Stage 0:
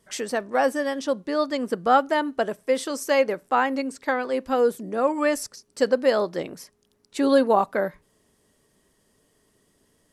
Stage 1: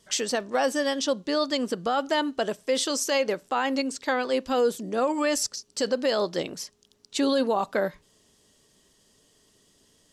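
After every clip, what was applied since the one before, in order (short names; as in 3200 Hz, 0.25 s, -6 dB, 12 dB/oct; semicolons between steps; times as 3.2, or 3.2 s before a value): band shelf 4600 Hz +8.5 dB; limiter -15.5 dBFS, peak gain reduction 10.5 dB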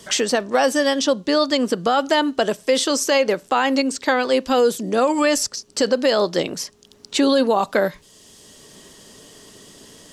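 three-band squash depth 40%; gain +7 dB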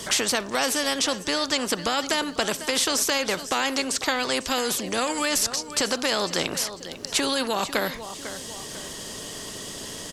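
feedback echo 0.498 s, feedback 32%, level -22.5 dB; spectral compressor 2:1; gain -3.5 dB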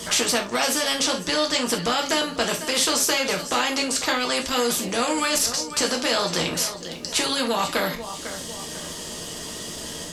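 reverb, pre-delay 3 ms, DRR 0.5 dB; core saturation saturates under 960 Hz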